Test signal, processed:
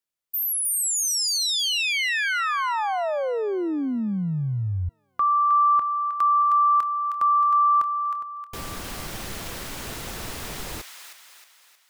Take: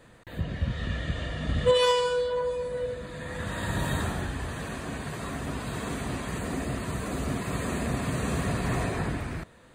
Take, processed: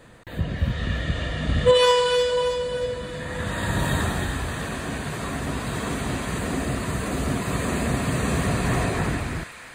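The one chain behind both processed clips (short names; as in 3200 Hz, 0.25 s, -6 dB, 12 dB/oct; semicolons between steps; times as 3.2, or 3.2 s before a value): thin delay 0.313 s, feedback 48%, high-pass 1400 Hz, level -5.5 dB; gain +5 dB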